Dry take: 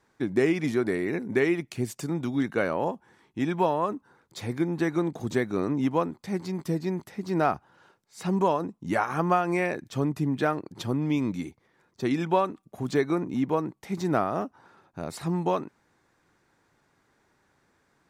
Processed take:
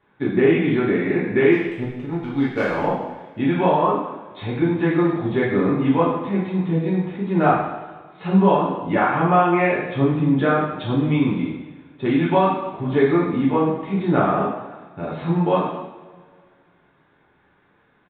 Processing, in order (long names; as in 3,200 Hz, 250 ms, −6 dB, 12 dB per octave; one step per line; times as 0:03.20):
downsampling to 8,000 Hz
0:01.52–0:02.84: power curve on the samples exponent 1.4
coupled-rooms reverb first 0.91 s, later 2.4 s, DRR −7 dB